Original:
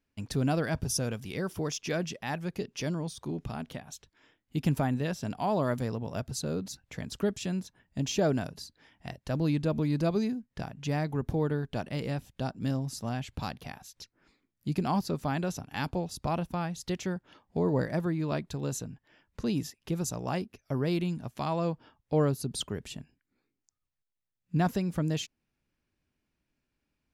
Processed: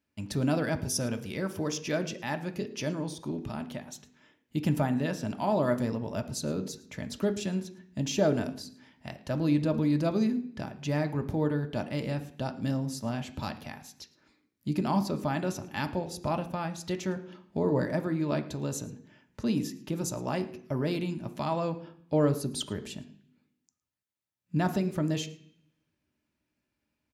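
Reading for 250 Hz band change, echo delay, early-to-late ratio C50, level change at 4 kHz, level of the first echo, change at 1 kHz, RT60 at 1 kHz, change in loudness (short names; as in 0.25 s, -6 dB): +2.0 dB, 0.11 s, 13.5 dB, 0.0 dB, -21.5 dB, 0.0 dB, 0.60 s, +1.0 dB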